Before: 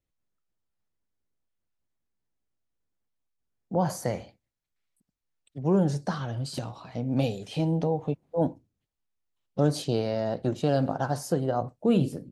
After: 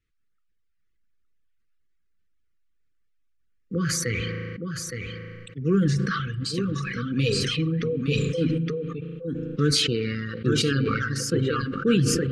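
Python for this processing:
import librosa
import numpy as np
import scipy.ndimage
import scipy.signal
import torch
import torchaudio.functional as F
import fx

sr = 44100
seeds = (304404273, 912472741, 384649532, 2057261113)

p1 = fx.brickwall_bandstop(x, sr, low_hz=520.0, high_hz=1100.0)
p2 = fx.peak_eq(p1, sr, hz=1900.0, db=10.0, octaves=1.8)
p3 = p2 + fx.echo_single(p2, sr, ms=866, db=-6.5, dry=0)
p4 = fx.rev_spring(p3, sr, rt60_s=2.3, pass_ms=(36,), chirp_ms=60, drr_db=10.0)
p5 = fx.dereverb_blind(p4, sr, rt60_s=1.6)
p6 = scipy.signal.sosfilt(scipy.signal.butter(2, 8100.0, 'lowpass', fs=sr, output='sos'), p5)
p7 = fx.low_shelf(p6, sr, hz=97.0, db=8.0)
y = fx.sustainer(p7, sr, db_per_s=22.0)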